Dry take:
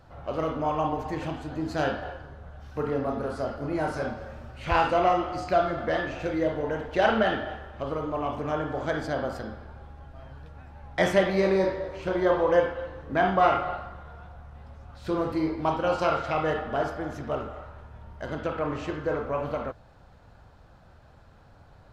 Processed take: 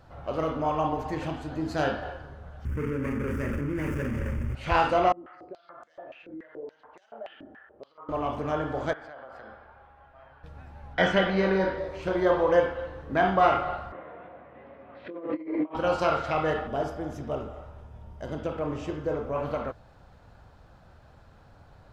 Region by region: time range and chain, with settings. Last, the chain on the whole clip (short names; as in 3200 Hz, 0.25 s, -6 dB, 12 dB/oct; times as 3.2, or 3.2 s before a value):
2.65–4.55 median filter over 41 samples + fixed phaser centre 1700 Hz, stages 4 + fast leveller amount 100%
5.12–8.09 high shelf 3300 Hz -11 dB + compressor 12:1, threshold -29 dBFS + stepped band-pass 7 Hz 260–7100 Hz
8.93–10.44 three-band isolator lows -16 dB, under 550 Hz, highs -21 dB, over 2900 Hz + compressor 8:1, threshold -40 dBFS
10.94–11.78 air absorption 120 m + comb 4.2 ms, depth 38% + small resonant body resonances 1500/3000 Hz, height 15 dB, ringing for 30 ms
13.92–15.75 negative-ratio compressor -33 dBFS, ratio -0.5 + speaker cabinet 300–2500 Hz, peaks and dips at 300 Hz +9 dB, 550 Hz +6 dB, 840 Hz -7 dB, 1400 Hz -8 dB, 2000 Hz +4 dB + doubler 23 ms -13 dB
16.67–19.36 bell 1600 Hz -8 dB 1.5 oct + notch 4200 Hz, Q 7.7
whole clip: dry